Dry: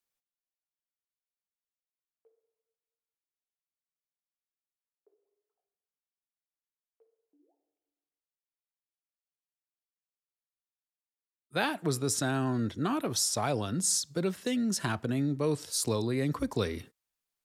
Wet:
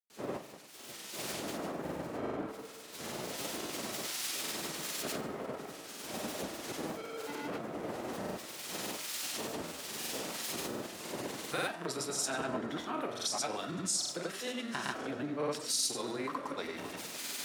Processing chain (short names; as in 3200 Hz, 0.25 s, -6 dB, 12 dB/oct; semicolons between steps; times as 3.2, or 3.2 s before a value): zero-crossing step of -41 dBFS; wind noise 300 Hz -39 dBFS; recorder AGC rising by 16 dB/s; weighting filter A; compressor 4:1, threshold -36 dBFS, peak gain reduction 10.5 dB; notches 50/100 Hz; split-band echo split 1600 Hz, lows 0.545 s, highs 0.143 s, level -15 dB; on a send at -4.5 dB: reverb RT60 0.50 s, pre-delay 5 ms; on the sum: grains, pitch spread up and down by 0 st; three-band expander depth 70%; gain +2 dB